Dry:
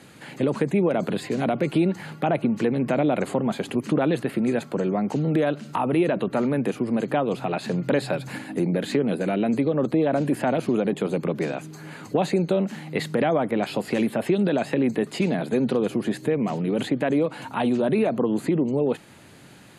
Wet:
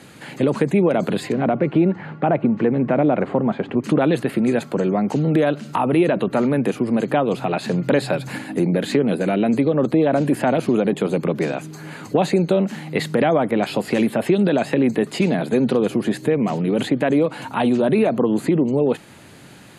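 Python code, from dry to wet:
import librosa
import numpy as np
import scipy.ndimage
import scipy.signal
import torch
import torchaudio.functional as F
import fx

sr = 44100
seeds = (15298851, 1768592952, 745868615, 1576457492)

y = fx.lowpass(x, sr, hz=1900.0, slope=12, at=(1.32, 3.84))
y = y * librosa.db_to_amplitude(4.5)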